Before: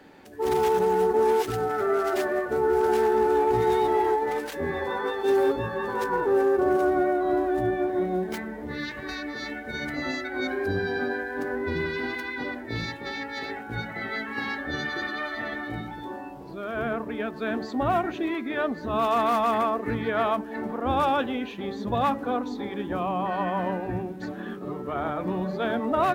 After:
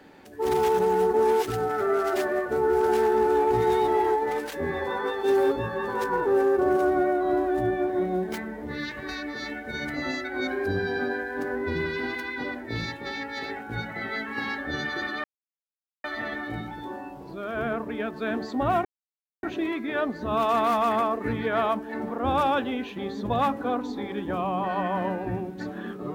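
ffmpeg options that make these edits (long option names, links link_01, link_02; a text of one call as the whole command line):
ffmpeg -i in.wav -filter_complex "[0:a]asplit=3[link_01][link_02][link_03];[link_01]atrim=end=15.24,asetpts=PTS-STARTPTS,afade=type=out:start_time=15.236:duration=0.004:curve=hsin,apad=pad_dur=0.8[link_04];[link_02]atrim=start=15.24:end=18.05,asetpts=PTS-STARTPTS,afade=type=in:duration=0.004:curve=hsin,afade=type=out:start_time=2.806:duration=0.004:curve=hsin,apad=pad_dur=0.58[link_05];[link_03]atrim=start=18.05,asetpts=PTS-STARTPTS,afade=type=in:duration=0.004:curve=hsin[link_06];[link_04][link_05][link_06]concat=n=3:v=0:a=1" out.wav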